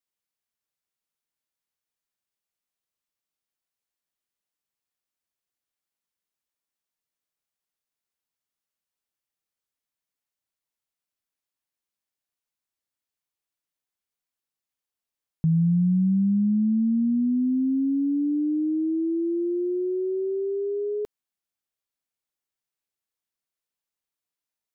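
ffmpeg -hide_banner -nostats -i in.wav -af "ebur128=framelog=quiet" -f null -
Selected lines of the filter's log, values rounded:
Integrated loudness:
  I:         -24.2 LUFS
  Threshold: -34.3 LUFS
Loudness range:
  LRA:        10.9 LU
  Threshold: -45.8 LUFS
  LRA low:   -33.7 LUFS
  LRA high:  -22.8 LUFS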